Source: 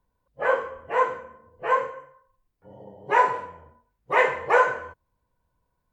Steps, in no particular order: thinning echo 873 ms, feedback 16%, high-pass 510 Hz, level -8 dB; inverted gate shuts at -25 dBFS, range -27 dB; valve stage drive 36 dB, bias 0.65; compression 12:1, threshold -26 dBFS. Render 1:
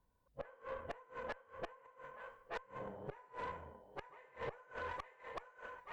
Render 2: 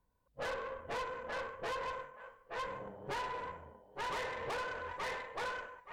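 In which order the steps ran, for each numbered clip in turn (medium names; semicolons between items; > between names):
thinning echo > compression > inverted gate > valve stage; thinning echo > compression > valve stage > inverted gate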